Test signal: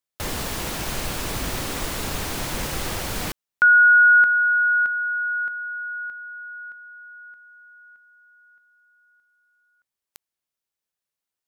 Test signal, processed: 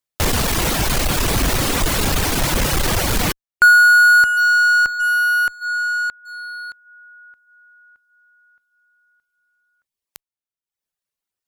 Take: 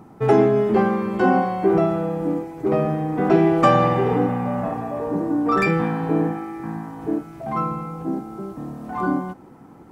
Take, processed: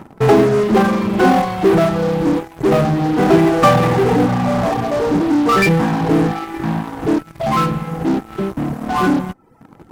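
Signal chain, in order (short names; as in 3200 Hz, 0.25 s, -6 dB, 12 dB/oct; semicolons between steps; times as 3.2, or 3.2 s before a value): reverb removal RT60 0.83 s; low shelf 100 Hz +5 dB; in parallel at -7 dB: fuzz box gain 32 dB, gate -41 dBFS; on the sum: gain +2 dB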